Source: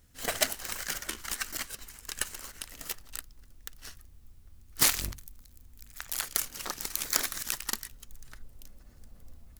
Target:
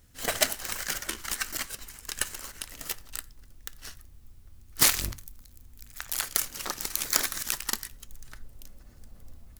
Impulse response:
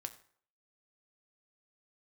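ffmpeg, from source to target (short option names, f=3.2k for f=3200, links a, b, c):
-filter_complex "[0:a]asplit=2[a][b];[1:a]atrim=start_sample=2205,atrim=end_sample=6174[c];[b][c]afir=irnorm=-1:irlink=0,volume=-2dB[d];[a][d]amix=inputs=2:normalize=0,volume=-1dB"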